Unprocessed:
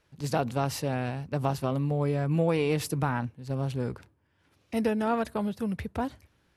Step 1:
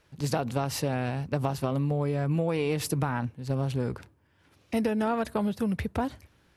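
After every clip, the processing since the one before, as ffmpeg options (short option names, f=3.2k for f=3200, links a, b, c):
-af "acompressor=threshold=-28dB:ratio=6,volume=4.5dB"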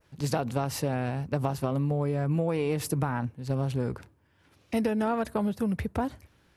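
-af "adynamicequalizer=threshold=0.00251:dfrequency=3600:dqfactor=0.79:tfrequency=3600:tqfactor=0.79:attack=5:release=100:ratio=0.375:range=2.5:mode=cutabove:tftype=bell"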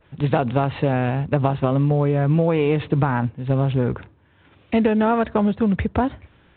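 -af "volume=9dB" -ar 8000 -c:a pcm_mulaw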